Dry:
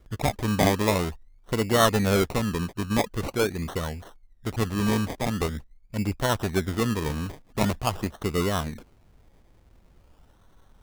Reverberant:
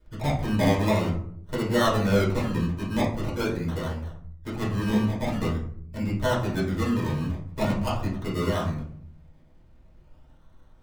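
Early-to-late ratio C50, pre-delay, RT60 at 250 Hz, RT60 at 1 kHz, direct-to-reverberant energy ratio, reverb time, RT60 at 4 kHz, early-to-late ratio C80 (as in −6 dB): 6.0 dB, 3 ms, 1.0 s, 0.55 s, −7.0 dB, 0.60 s, 0.30 s, 10.5 dB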